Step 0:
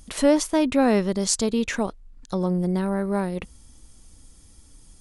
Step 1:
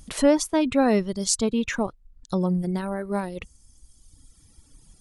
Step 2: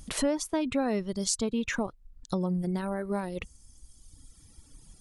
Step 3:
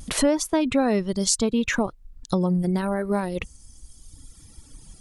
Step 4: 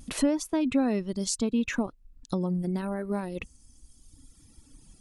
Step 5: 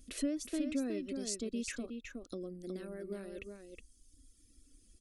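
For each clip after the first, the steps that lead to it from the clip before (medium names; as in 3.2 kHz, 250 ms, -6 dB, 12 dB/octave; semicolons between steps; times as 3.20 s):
reverb removal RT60 1.5 s; peaking EQ 140 Hz +5 dB 0.77 oct
compression 2.5:1, threshold -28 dBFS, peak gain reduction 10.5 dB
vibrato 0.76 Hz 17 cents; trim +7 dB
small resonant body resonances 260/2600 Hz, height 7 dB, ringing for 25 ms; trim -8.5 dB
static phaser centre 370 Hz, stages 4; delay 367 ms -6 dB; trim -8.5 dB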